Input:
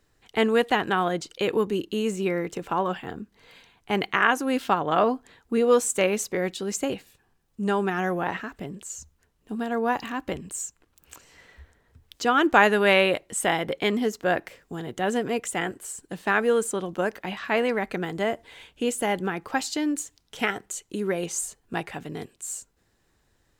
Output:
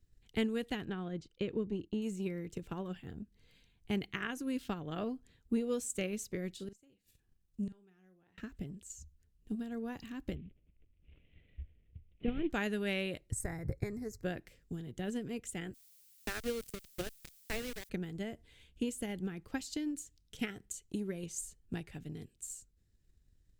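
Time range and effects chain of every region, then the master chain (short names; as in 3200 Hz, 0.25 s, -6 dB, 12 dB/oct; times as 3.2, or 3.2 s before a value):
0.85–2.02 gate -44 dBFS, range -7 dB + LPF 6300 Hz + high shelf 2900 Hz -9 dB
6.54–8.38 low shelf 180 Hz -5.5 dB + flipped gate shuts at -22 dBFS, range -25 dB + doubler 43 ms -11.5 dB
10.35–12.5 CVSD 16 kbps + band shelf 1200 Hz -11 dB 1.3 oct
13.31–14.23 Butterworth band-stop 3100 Hz, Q 1.2 + resonant low shelf 150 Hz +10 dB, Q 3
15.73–17.88 steep high-pass 240 Hz 48 dB/oct + sample gate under -23.5 dBFS + added noise blue -50 dBFS
whole clip: passive tone stack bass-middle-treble 10-0-1; transient shaper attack +7 dB, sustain +1 dB; gain +7 dB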